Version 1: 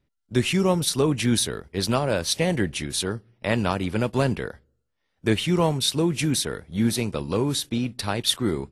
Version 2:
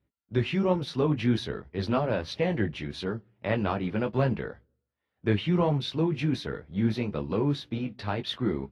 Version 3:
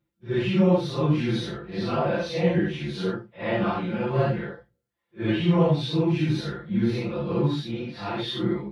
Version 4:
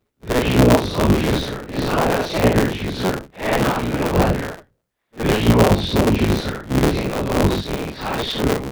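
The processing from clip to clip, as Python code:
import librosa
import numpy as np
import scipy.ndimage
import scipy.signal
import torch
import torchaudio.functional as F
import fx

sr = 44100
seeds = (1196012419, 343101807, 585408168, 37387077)

y1 = scipy.signal.sosfilt(scipy.signal.butter(2, 56.0, 'highpass', fs=sr, output='sos'), x)
y1 = fx.chorus_voices(y1, sr, voices=2, hz=1.3, base_ms=17, depth_ms=3.2, mix_pct=35)
y1 = fx.air_absorb(y1, sr, metres=300.0)
y2 = fx.phase_scramble(y1, sr, seeds[0], window_ms=200)
y2 = y2 + 0.93 * np.pad(y2, (int(5.8 * sr / 1000.0), 0))[:len(y2)]
y3 = fx.cycle_switch(y2, sr, every=3, mode='inverted')
y3 = y3 * librosa.db_to_amplitude(6.5)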